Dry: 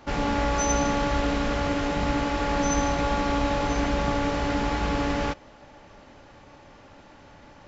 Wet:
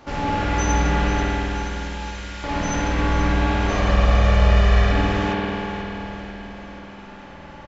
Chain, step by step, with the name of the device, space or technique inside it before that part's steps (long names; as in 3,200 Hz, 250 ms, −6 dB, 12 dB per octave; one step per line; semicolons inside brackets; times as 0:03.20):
0:01.23–0:02.44: first difference
0:03.69–0:04.92: comb filter 1.7 ms, depth 97%
repeating echo 485 ms, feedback 53%, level −12.5 dB
parallel compression (in parallel at −2.5 dB: downward compressor, threshold −42 dBFS, peak gain reduction 22.5 dB)
on the sum: spring reverb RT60 3.3 s, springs 50 ms, chirp 65 ms, DRR −5.5 dB
level −2.5 dB